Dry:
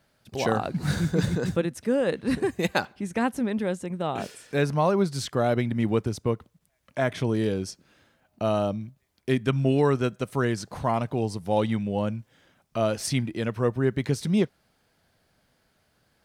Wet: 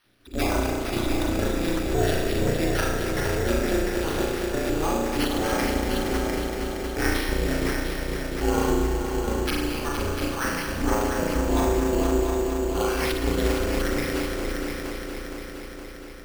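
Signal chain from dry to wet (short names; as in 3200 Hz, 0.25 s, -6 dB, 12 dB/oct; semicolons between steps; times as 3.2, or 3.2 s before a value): random spectral dropouts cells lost 35%; bell 740 Hz -12 dB 1.8 oct; negative-ratio compressor -31 dBFS, ratio -0.5; ring modulator 160 Hz; on a send: multi-head echo 0.233 s, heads all three, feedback 66%, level -9.5 dB; on the sum: spring tank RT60 1 s, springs 34 ms, chirp 30 ms, DRR -3 dB; careless resampling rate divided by 6×, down none, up hold; gain +6.5 dB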